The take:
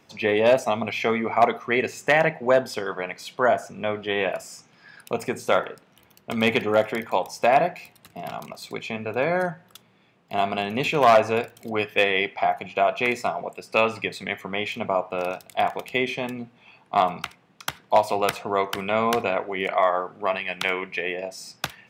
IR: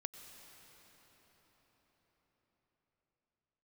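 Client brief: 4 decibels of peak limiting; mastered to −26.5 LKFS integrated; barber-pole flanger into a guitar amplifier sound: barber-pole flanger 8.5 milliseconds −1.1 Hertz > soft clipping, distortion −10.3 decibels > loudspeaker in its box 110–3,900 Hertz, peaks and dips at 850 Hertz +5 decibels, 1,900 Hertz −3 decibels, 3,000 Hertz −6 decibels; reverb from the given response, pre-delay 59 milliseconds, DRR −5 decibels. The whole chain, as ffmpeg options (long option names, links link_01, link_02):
-filter_complex "[0:a]alimiter=limit=-10.5dB:level=0:latency=1,asplit=2[link_01][link_02];[1:a]atrim=start_sample=2205,adelay=59[link_03];[link_02][link_03]afir=irnorm=-1:irlink=0,volume=8dB[link_04];[link_01][link_04]amix=inputs=2:normalize=0,asplit=2[link_05][link_06];[link_06]adelay=8.5,afreqshift=-1.1[link_07];[link_05][link_07]amix=inputs=2:normalize=1,asoftclip=threshold=-19dB,highpass=110,equalizer=frequency=850:width_type=q:width=4:gain=5,equalizer=frequency=1900:width_type=q:width=4:gain=-3,equalizer=frequency=3000:width_type=q:width=4:gain=-6,lowpass=frequency=3900:width=0.5412,lowpass=frequency=3900:width=1.3066,volume=-0.5dB"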